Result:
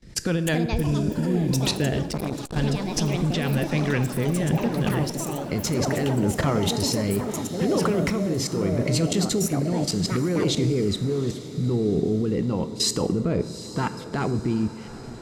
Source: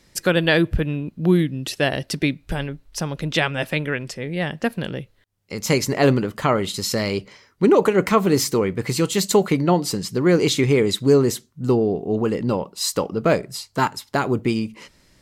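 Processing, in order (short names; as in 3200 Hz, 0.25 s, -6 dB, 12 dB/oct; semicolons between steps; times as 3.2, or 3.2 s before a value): Bessel low-pass 8200 Hz, order 2; low shelf 330 Hz +10.5 dB; notch 570 Hz, Q 12; in parallel at +3 dB: compressor 12:1, threshold -18 dBFS, peak gain reduction 14 dB; on the sum: limiter -5 dBFS, peak gain reduction 9 dB; level quantiser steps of 22 dB; rotary speaker horn 5.5 Hz, later 0.8 Hz, at 0.9; plate-style reverb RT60 1.5 s, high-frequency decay 0.6×, DRR 11.5 dB; echoes that change speed 0.354 s, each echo +6 st, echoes 3, each echo -6 dB; on a send: diffused feedback echo 0.808 s, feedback 51%, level -14.5 dB; 2.07–2.56 on the sum: core saturation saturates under 650 Hz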